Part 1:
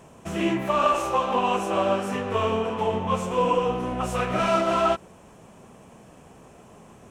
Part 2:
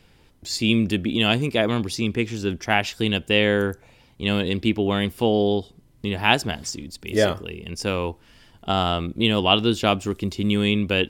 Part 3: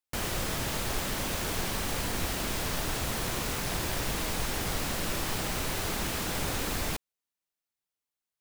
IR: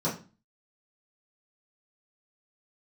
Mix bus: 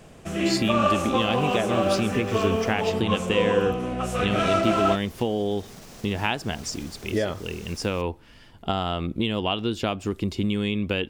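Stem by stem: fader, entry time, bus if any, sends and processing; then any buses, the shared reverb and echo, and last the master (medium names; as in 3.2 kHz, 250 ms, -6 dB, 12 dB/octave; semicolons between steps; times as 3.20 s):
+0.5 dB, 0.00 s, no bus, no send, peaking EQ 950 Hz -12 dB 0.24 oct
+2.0 dB, 0.00 s, bus A, no send, treble shelf 4.3 kHz -5.5 dB
-9.0 dB, 1.05 s, muted 2.91–4.63 s, bus A, no send, peaking EQ 5.8 kHz +7 dB; peak limiter -28.5 dBFS, peak gain reduction 10.5 dB
bus A: 0.0 dB, compression 10:1, threshold -21 dBFS, peak gain reduction 11.5 dB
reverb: none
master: none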